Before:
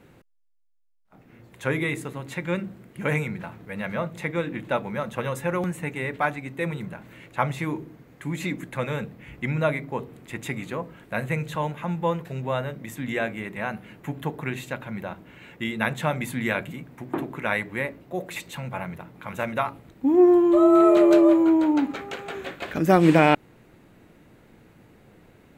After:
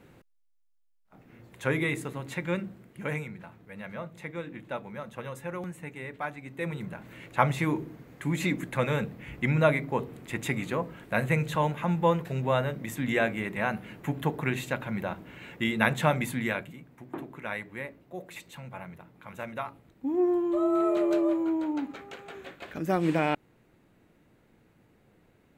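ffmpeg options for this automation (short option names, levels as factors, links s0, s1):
-af "volume=2.82,afade=t=out:st=2.34:d=0.97:silence=0.398107,afade=t=in:st=6.32:d=1.08:silence=0.281838,afade=t=out:st=16.08:d=0.64:silence=0.298538"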